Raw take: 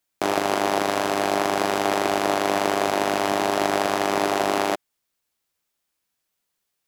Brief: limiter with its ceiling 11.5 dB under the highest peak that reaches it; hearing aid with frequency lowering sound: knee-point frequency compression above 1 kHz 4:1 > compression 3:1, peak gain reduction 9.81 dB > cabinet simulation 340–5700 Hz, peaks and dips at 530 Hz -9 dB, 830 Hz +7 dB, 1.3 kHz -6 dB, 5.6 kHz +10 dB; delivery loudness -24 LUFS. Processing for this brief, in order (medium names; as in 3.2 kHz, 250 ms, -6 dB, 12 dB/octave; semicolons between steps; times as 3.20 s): peak limiter -16 dBFS; knee-point frequency compression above 1 kHz 4:1; compression 3:1, threshold -37 dBFS; cabinet simulation 340–5700 Hz, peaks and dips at 530 Hz -9 dB, 830 Hz +7 dB, 1.3 kHz -6 dB, 5.6 kHz +10 dB; trim +15 dB